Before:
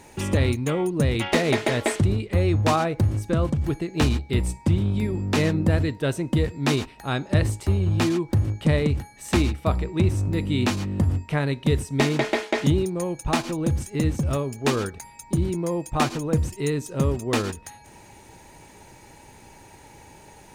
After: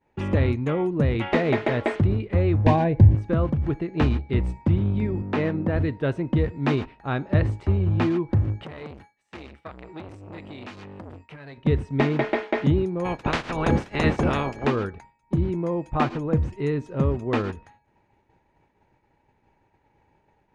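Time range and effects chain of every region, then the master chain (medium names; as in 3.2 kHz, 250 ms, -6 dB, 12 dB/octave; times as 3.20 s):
2.66–3.15 s: Butterworth band-stop 1.3 kHz, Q 2.9 + bass shelf 200 Hz +10.5 dB
5.22–5.76 s: high-pass 210 Hz 6 dB/octave + treble shelf 4.3 kHz -8.5 dB
8.63–11.58 s: tilt EQ +3 dB/octave + compression, threshold -29 dBFS + transformer saturation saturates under 1.3 kHz
13.04–14.65 s: spectral peaks clipped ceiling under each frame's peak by 28 dB + peaking EQ 140 Hz +6 dB 2.9 oct
whole clip: low-pass 2.2 kHz 12 dB/octave; expander -37 dBFS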